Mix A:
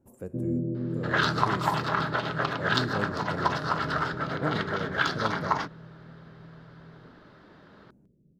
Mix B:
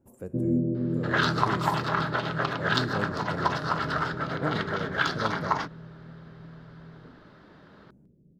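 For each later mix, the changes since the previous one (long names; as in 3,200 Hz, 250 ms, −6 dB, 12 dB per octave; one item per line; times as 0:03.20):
first sound: send on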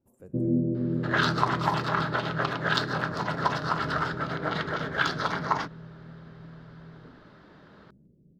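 speech −10.0 dB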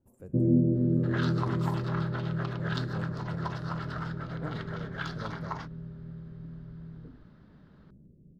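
second sound −11.5 dB
master: add low-shelf EQ 110 Hz +10 dB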